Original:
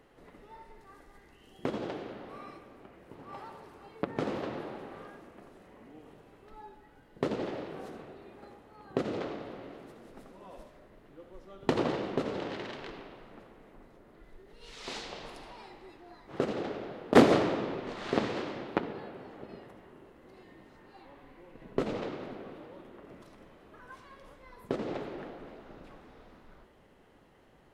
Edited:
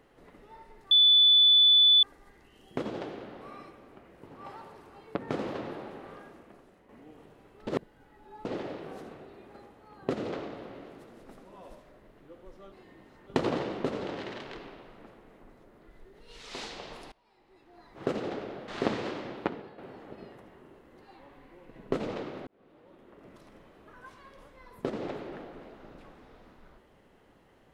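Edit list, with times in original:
0.91 s: add tone 3.48 kHz -16 dBFS 1.12 s
5.23–5.77 s: fade out, to -7.5 dB
6.55–7.33 s: reverse
15.45–16.26 s: fade in quadratic, from -22.5 dB
17.01–17.99 s: delete
18.70–19.09 s: fade out, to -10 dB
20.32–20.87 s: move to 11.60 s
22.33–23.33 s: fade in

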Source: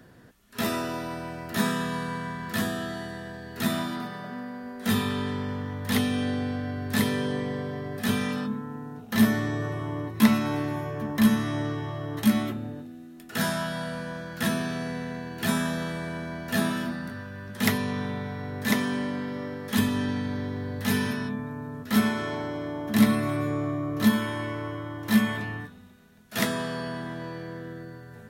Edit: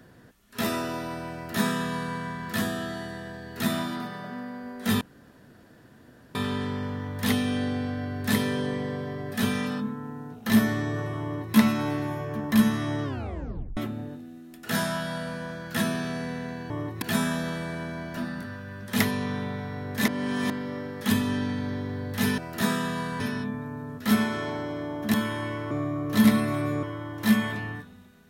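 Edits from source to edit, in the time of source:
1.34–2.16 s: copy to 21.05 s
5.01 s: insert room tone 1.34 s
9.89–10.21 s: copy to 15.36 s
11.70 s: tape stop 0.73 s
16.51–16.84 s: delete
18.75–19.17 s: reverse
22.99–23.58 s: swap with 24.11–24.68 s

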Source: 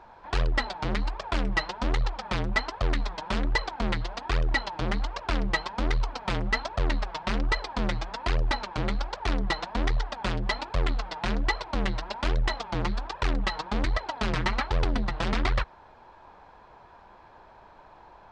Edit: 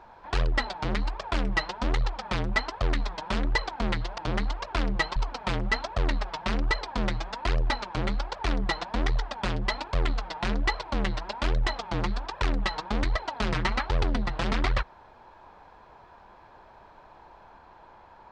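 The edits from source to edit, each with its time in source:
4.18–4.72 s: delete
5.70–5.97 s: delete

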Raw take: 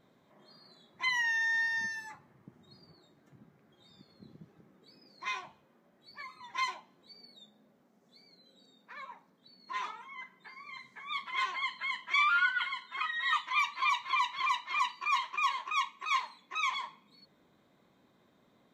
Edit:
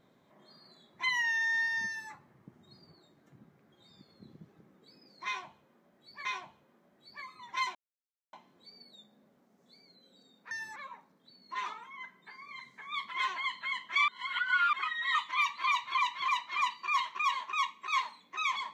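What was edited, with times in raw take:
1.87–2.12 s: copy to 8.94 s
5.26–6.25 s: loop, 2 plays
6.76 s: insert silence 0.58 s
12.26–12.91 s: reverse

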